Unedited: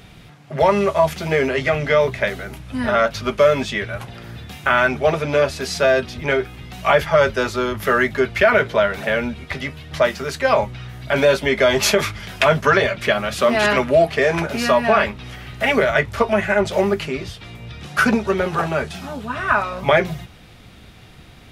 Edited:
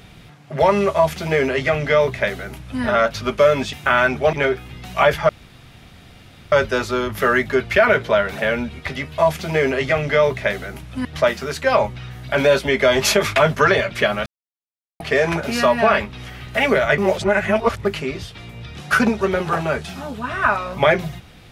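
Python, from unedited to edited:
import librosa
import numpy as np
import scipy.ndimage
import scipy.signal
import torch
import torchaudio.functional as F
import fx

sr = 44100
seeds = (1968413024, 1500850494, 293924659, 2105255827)

y = fx.edit(x, sr, fx.duplicate(start_s=0.95, length_s=1.87, to_s=9.83),
    fx.cut(start_s=3.73, length_s=0.8),
    fx.cut(start_s=5.13, length_s=1.08),
    fx.insert_room_tone(at_s=7.17, length_s=1.23),
    fx.cut(start_s=12.14, length_s=0.28),
    fx.silence(start_s=13.32, length_s=0.74),
    fx.reverse_span(start_s=16.04, length_s=0.87), tone=tone)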